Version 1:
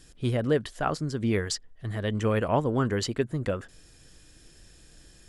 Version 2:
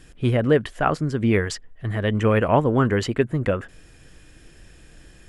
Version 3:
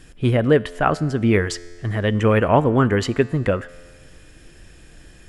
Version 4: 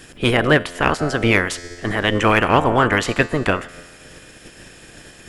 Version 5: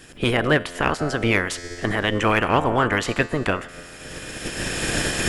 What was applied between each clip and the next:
high shelf with overshoot 3,300 Hz −6.5 dB, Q 1.5; level +6.5 dB
tuned comb filter 87 Hz, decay 1.8 s, harmonics all, mix 50%; level +8 dB
ceiling on every frequency bin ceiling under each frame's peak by 19 dB; in parallel at −6 dB: hard clipping −10 dBFS, distortion −14 dB; on the sum: level −2 dB
camcorder AGC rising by 17 dB per second; level −4 dB

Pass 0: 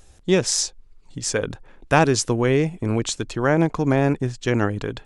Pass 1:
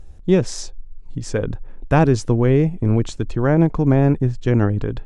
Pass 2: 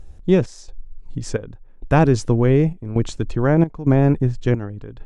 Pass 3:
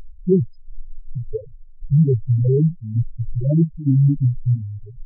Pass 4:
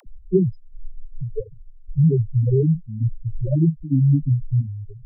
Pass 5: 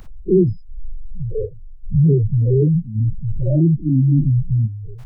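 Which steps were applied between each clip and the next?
spectral tilt −3 dB per octave; level −2 dB
gate pattern "xx.xxx..xxxx.x" 66 BPM −12 dB
spectral peaks only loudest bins 2; level +4 dB
all-pass dispersion lows, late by 66 ms, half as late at 390 Hz; level −1.5 dB
every bin's largest magnitude spread in time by 120 ms

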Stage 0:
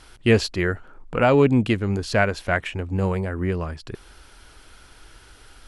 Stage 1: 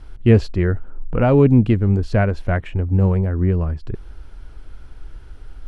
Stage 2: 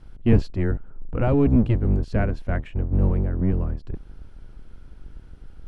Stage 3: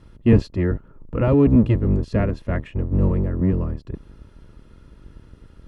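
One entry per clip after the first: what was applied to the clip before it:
spectral tilt −3.5 dB per octave; level −2.5 dB
sub-octave generator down 1 octave, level +2 dB; level −7.5 dB
notch comb filter 760 Hz; level +4 dB

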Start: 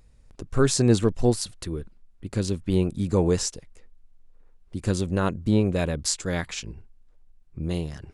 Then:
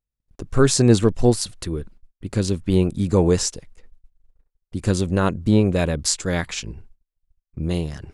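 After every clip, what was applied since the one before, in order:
noise gate −47 dBFS, range −36 dB
level +4.5 dB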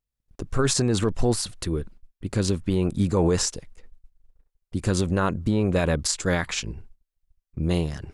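dynamic equaliser 1,200 Hz, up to +5 dB, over −35 dBFS, Q 0.87
brickwall limiter −12.5 dBFS, peak gain reduction 11 dB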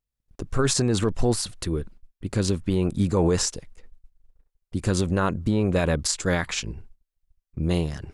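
no processing that can be heard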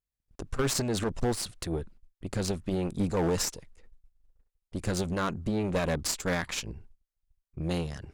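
gain into a clipping stage and back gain 17 dB
harmonic generator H 2 −10 dB, 6 −28 dB, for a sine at −16.5 dBFS
level −5.5 dB

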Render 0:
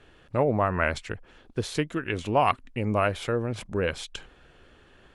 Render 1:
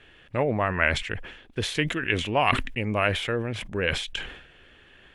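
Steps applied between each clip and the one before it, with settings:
flat-topped bell 2,400 Hz +8.5 dB 1.3 octaves
level that may fall only so fast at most 75 dB per second
level −1.5 dB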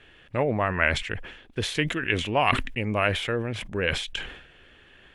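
no processing that can be heard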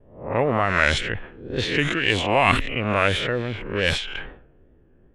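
peak hold with a rise ahead of every peak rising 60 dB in 0.63 s
tape wow and flutter 69 cents
low-pass that shuts in the quiet parts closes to 350 Hz, open at −18.5 dBFS
level +2 dB

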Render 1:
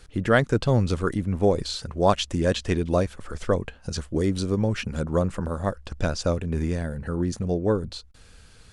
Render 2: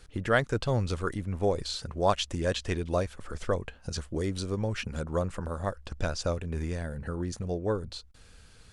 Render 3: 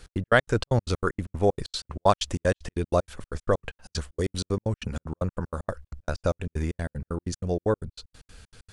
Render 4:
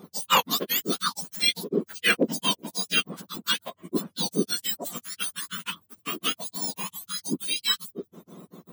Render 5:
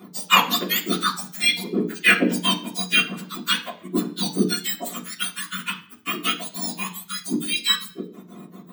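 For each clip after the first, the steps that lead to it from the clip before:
dynamic equaliser 220 Hz, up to −6 dB, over −33 dBFS, Q 0.72; level −3.5 dB
gate pattern "x.x.x.xx.x." 190 BPM −60 dB; level +5 dB
frequency axis turned over on the octave scale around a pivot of 1,300 Hz; wave folding −15 dBFS; level +4.5 dB
convolution reverb RT60 0.45 s, pre-delay 3 ms, DRR −2 dB; level +1 dB

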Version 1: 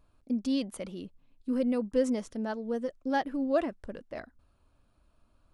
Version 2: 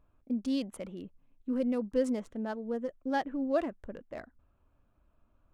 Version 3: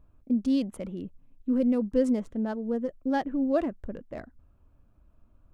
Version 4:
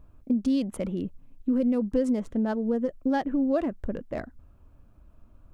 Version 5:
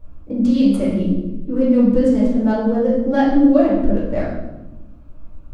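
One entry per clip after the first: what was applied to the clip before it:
adaptive Wiener filter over 9 samples; level −2 dB
low-shelf EQ 380 Hz +9.5 dB
downward compressor 3 to 1, threshold −29 dBFS, peak gain reduction 8 dB; level +6 dB
convolution reverb RT60 1.0 s, pre-delay 7 ms, DRR −8.5 dB; level −1.5 dB

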